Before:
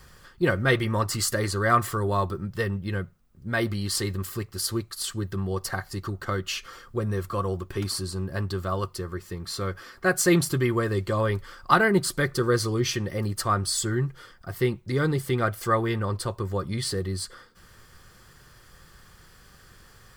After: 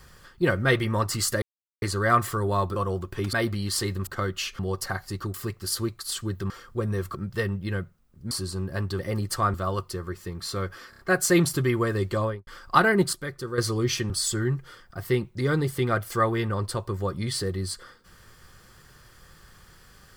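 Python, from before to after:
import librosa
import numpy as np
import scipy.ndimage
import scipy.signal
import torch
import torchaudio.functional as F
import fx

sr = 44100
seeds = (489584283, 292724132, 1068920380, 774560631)

y = fx.studio_fade_out(x, sr, start_s=11.13, length_s=0.3)
y = fx.edit(y, sr, fx.insert_silence(at_s=1.42, length_s=0.4),
    fx.swap(start_s=2.36, length_s=1.16, other_s=7.34, other_length_s=0.57),
    fx.swap(start_s=4.26, length_s=1.16, other_s=6.17, other_length_s=0.52),
    fx.stutter(start_s=9.95, slice_s=0.03, count=4),
    fx.clip_gain(start_s=12.09, length_s=0.45, db=-9.0),
    fx.move(start_s=13.06, length_s=0.55, to_s=8.59), tone=tone)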